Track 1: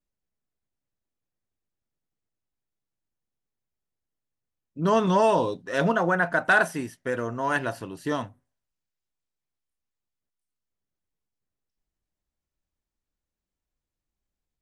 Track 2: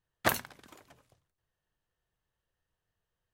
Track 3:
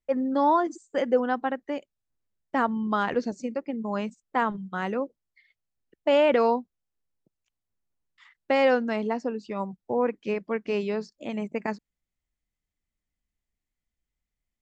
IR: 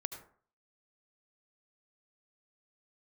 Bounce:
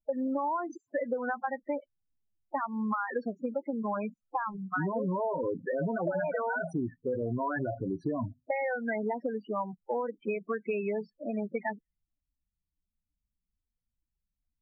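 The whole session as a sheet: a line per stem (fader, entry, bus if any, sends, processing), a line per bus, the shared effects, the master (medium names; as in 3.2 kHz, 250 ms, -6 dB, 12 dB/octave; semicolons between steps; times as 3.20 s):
+1.0 dB, 0.00 s, bus A, no send, treble shelf 2.1 kHz -7.5 dB; compression 6:1, threshold -24 dBFS, peak gain reduction 7 dB
-15.0 dB, 0.00 s, bus A, no send, compression 6:1, threshold -32 dBFS, peak gain reduction 11 dB
-1.5 dB, 0.00 s, no bus, no send, level-controlled noise filter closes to 1 kHz, open at -19.5 dBFS; peaking EQ 1.6 kHz +11.5 dB 2.5 oct; compression 12:1, threshold -19 dBFS, peak gain reduction 10 dB
bus A: 0.0 dB, waveshaping leveller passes 2; peak limiter -20 dBFS, peak gain reduction 5.5 dB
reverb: none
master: loudest bins only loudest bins 8; short-mantissa float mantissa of 8-bit; compression, threshold -28 dBFS, peak gain reduction 8.5 dB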